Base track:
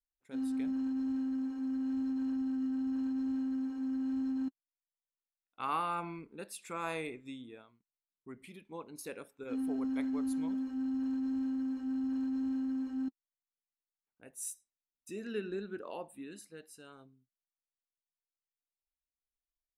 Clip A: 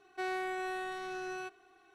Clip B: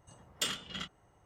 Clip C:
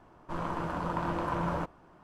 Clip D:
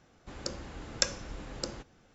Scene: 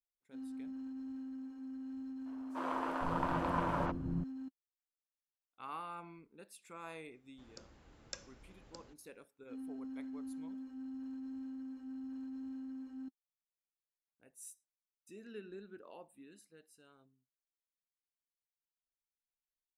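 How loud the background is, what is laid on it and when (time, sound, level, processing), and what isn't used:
base track -10.5 dB
2.21 add C -2 dB + three bands offset in time highs, mids, lows 50/510 ms, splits 310/5900 Hz
7.11 add D -18 dB
not used: A, B

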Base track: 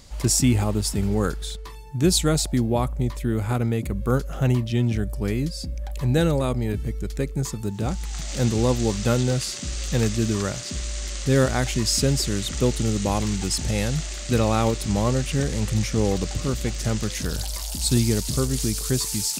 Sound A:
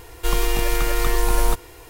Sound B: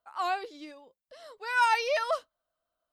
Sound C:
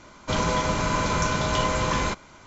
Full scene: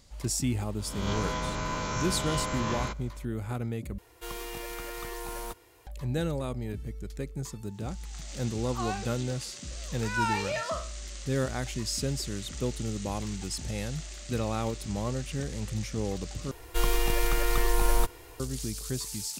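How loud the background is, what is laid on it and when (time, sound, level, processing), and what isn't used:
base track -10 dB
0.79 add C -10.5 dB + spectral swells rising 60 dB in 0.93 s
3.98 replace with A -14 dB + HPF 99 Hz 6 dB/oct
8.59 add B -6 dB + spectral trails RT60 0.41 s
16.51 replace with A -5.5 dB

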